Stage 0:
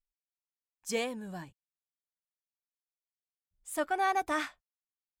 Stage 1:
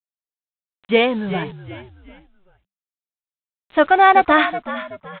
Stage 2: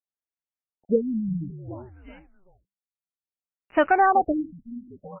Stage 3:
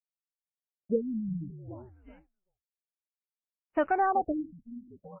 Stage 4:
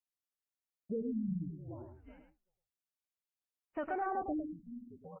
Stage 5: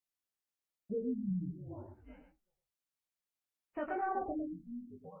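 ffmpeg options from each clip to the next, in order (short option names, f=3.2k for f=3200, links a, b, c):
-filter_complex "[0:a]dynaudnorm=f=230:g=5:m=11.5dB,aresample=8000,acrusher=bits=7:mix=0:aa=0.000001,aresample=44100,asplit=4[a][b][c][d];[b]adelay=376,afreqshift=-66,volume=-13dB[e];[c]adelay=752,afreqshift=-132,volume=-22.1dB[f];[d]adelay=1128,afreqshift=-198,volume=-31.2dB[g];[a][e][f][g]amix=inputs=4:normalize=0,volume=6dB"
-af "acompressor=threshold=-13dB:ratio=3,asoftclip=type=hard:threshold=-9dB,afftfilt=real='re*lt(b*sr/1024,250*pow(3100/250,0.5+0.5*sin(2*PI*0.59*pts/sr)))':imag='im*lt(b*sr/1024,250*pow(3100/250,0.5+0.5*sin(2*PI*0.59*pts/sr)))':win_size=1024:overlap=0.75,volume=-2dB"
-af "lowpass=f=1.2k:p=1,agate=range=-33dB:threshold=-44dB:ratio=3:detection=peak,volume=-6dB"
-filter_complex "[0:a]alimiter=level_in=2dB:limit=-24dB:level=0:latency=1:release=12,volume=-2dB,asplit=2[a][b];[b]aecho=0:1:107:0.447[c];[a][c]amix=inputs=2:normalize=0,volume=-3.5dB"
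-af "flanger=delay=19.5:depth=2.7:speed=1,volume=3dB"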